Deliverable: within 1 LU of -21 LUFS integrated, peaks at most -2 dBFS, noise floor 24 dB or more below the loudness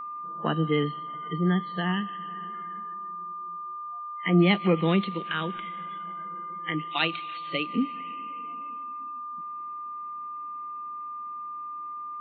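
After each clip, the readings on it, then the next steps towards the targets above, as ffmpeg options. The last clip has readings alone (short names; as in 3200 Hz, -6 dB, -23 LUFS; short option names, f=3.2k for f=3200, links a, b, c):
steady tone 1200 Hz; tone level -34 dBFS; loudness -30.0 LUFS; peak -9.0 dBFS; loudness target -21.0 LUFS
-> -af "bandreject=f=1.2k:w=30"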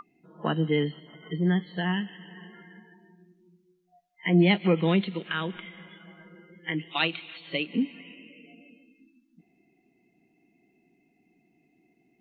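steady tone none; loudness -27.5 LUFS; peak -9.0 dBFS; loudness target -21.0 LUFS
-> -af "volume=6.5dB"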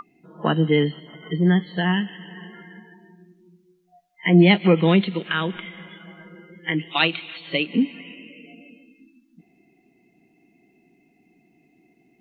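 loudness -21.0 LUFS; peak -2.5 dBFS; noise floor -63 dBFS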